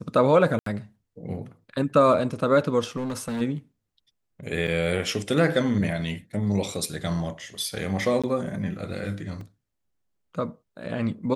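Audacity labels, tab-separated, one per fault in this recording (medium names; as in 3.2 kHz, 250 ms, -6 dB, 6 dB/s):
0.590000	0.660000	dropout 73 ms
2.960000	3.420000	clipped -26 dBFS
4.670000	4.680000	dropout 7.5 ms
8.220000	8.240000	dropout 16 ms
9.410000	9.410000	dropout 2.6 ms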